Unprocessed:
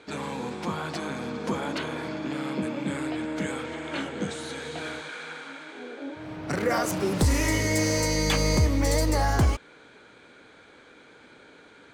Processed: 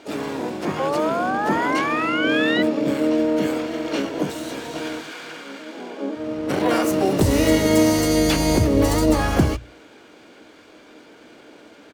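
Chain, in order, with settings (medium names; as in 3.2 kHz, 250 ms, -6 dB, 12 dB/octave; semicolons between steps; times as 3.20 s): hum notches 60/120 Hz; painted sound rise, 0.79–2.63 s, 520–2000 Hz -26 dBFS; small resonant body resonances 310/2800 Hz, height 11 dB, ringing for 35 ms; harmony voices -5 st -11 dB, +7 st -6 dB, +12 st -6 dB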